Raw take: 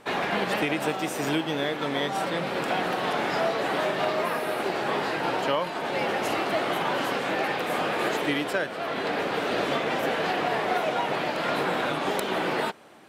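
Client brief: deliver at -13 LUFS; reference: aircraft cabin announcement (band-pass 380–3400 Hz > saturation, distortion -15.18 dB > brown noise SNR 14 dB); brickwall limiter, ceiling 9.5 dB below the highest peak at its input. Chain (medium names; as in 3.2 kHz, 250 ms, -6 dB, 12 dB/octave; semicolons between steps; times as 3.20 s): peak limiter -21.5 dBFS; band-pass 380–3400 Hz; saturation -28 dBFS; brown noise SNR 14 dB; trim +21 dB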